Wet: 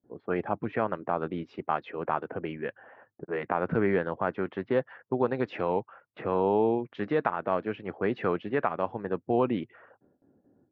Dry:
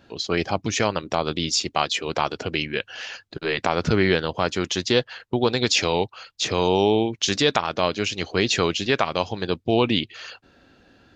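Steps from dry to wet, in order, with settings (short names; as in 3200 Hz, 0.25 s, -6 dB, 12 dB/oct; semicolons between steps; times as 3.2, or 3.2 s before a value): HPF 130 Hz 12 dB/oct; low-pass opened by the level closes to 420 Hz, open at -17.5 dBFS; LPF 1700 Hz 24 dB/oct; gate with hold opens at -50 dBFS; speed mistake 24 fps film run at 25 fps; gain -5 dB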